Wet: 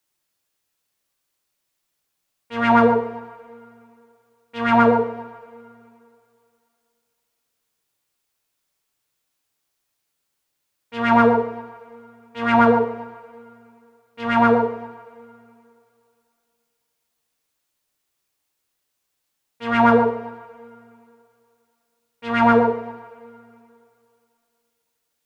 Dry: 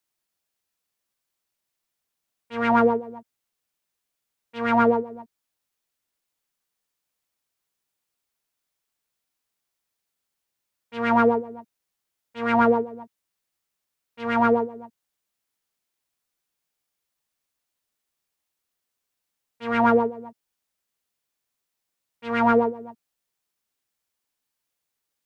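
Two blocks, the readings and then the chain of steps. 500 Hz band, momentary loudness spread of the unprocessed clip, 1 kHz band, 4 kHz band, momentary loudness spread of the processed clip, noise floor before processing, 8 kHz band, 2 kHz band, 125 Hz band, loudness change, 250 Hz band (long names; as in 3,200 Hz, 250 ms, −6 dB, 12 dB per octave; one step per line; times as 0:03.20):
+3.5 dB, 19 LU, +4.5 dB, +6.5 dB, 20 LU, −82 dBFS, can't be measured, +5.0 dB, +7.5 dB, +3.5 dB, +4.5 dB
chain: coupled-rooms reverb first 0.58 s, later 2.6 s, from −18 dB, DRR 5 dB
level +4.5 dB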